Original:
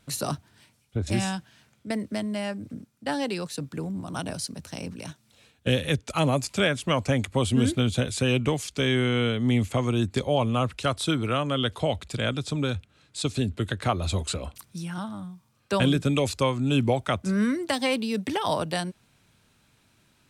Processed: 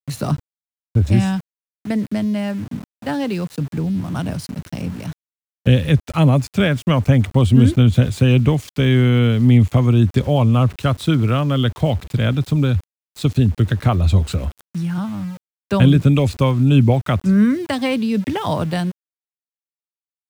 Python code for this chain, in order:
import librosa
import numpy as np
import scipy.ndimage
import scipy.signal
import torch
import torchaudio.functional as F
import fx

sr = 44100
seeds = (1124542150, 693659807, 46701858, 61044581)

y = fx.bass_treble(x, sr, bass_db=11, treble_db=-7)
y = np.where(np.abs(y) >= 10.0 ** (-38.0 / 20.0), y, 0.0)
y = y * librosa.db_to_amplitude(3.5)